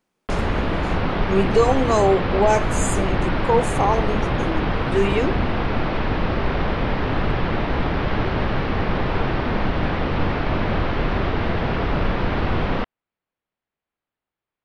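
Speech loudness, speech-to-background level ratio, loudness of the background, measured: -22.0 LUFS, 1.5 dB, -23.5 LUFS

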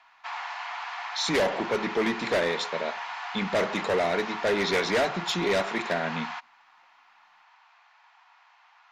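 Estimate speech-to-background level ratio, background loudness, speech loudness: 7.5 dB, -35.0 LUFS, -27.5 LUFS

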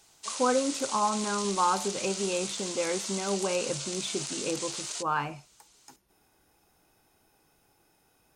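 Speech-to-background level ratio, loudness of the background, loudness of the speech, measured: 3.0 dB, -34.0 LUFS, -31.0 LUFS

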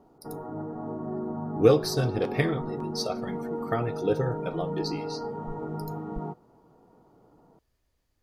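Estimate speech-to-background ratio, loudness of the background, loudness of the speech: 7.0 dB, -35.0 LUFS, -28.0 LUFS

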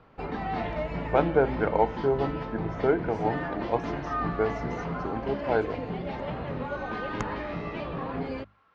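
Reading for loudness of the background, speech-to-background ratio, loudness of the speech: -33.5 LUFS, 4.5 dB, -29.0 LUFS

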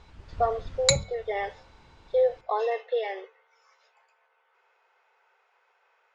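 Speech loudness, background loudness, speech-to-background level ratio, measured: -29.0 LUFS, -26.0 LUFS, -3.0 dB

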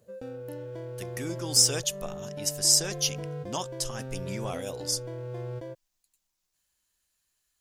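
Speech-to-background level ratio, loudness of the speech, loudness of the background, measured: 12.0 dB, -26.5 LUFS, -38.5 LUFS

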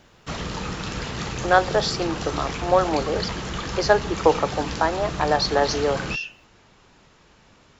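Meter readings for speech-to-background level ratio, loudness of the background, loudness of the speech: 7.5 dB, -30.5 LUFS, -23.0 LUFS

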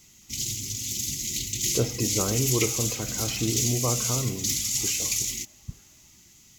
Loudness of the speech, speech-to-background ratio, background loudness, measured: -30.0 LUFS, -3.5 dB, -26.5 LUFS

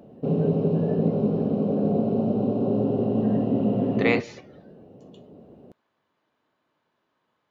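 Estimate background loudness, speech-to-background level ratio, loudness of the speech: -24.0 LUFS, -3.5 dB, -27.5 LUFS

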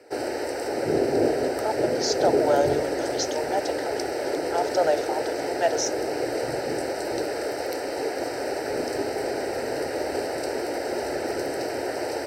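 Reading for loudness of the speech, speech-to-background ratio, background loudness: -28.0 LUFS, -0.5 dB, -27.5 LUFS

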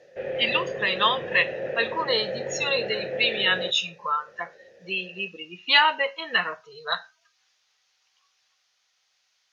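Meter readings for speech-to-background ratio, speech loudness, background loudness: 8.0 dB, -24.5 LUFS, -32.5 LUFS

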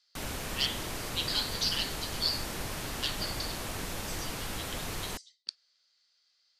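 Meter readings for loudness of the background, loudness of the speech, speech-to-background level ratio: -37.0 LUFS, -34.5 LUFS, 2.5 dB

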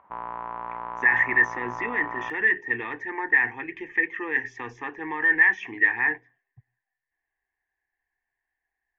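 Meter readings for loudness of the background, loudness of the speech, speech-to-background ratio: -35.0 LUFS, -23.0 LUFS, 12.0 dB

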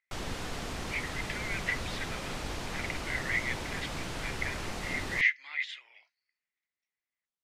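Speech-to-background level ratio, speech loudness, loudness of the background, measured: 3.5 dB, -34.5 LUFS, -38.0 LUFS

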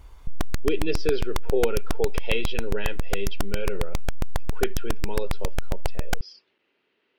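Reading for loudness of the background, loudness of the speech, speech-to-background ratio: -33.0 LUFS, -30.5 LUFS, 2.5 dB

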